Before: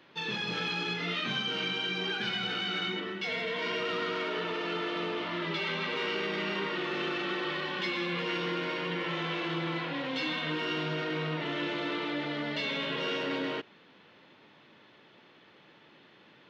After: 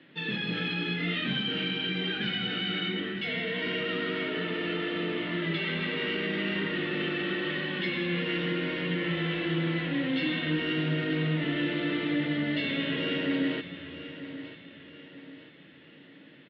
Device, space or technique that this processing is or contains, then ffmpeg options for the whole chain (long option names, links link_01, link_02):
frequency-shifting delay pedal into a guitar cabinet: -filter_complex "[0:a]equalizer=frequency=250:width_type=o:width=1:gain=11,equalizer=frequency=1000:width_type=o:width=1:gain=-12,equalizer=frequency=2000:width_type=o:width=1:gain=9,asplit=6[link_01][link_02][link_03][link_04][link_05][link_06];[link_02]adelay=253,afreqshift=-96,volume=-22.5dB[link_07];[link_03]adelay=506,afreqshift=-192,volume=-26.8dB[link_08];[link_04]adelay=759,afreqshift=-288,volume=-31.1dB[link_09];[link_05]adelay=1012,afreqshift=-384,volume=-35.4dB[link_10];[link_06]adelay=1265,afreqshift=-480,volume=-39.7dB[link_11];[link_01][link_07][link_08][link_09][link_10][link_11]amix=inputs=6:normalize=0,highpass=99,equalizer=frequency=150:width_type=q:width=4:gain=4,equalizer=frequency=230:width_type=q:width=4:gain=-6,equalizer=frequency=390:width_type=q:width=4:gain=-5,equalizer=frequency=1500:width_type=q:width=4:gain=-3,equalizer=frequency=2300:width_type=q:width=4:gain=-8,lowpass=frequency=3500:width=0.5412,lowpass=frequency=3500:width=1.3066,aecho=1:1:938|1876|2814|3752:0.224|0.094|0.0395|0.0166,volume=1.5dB"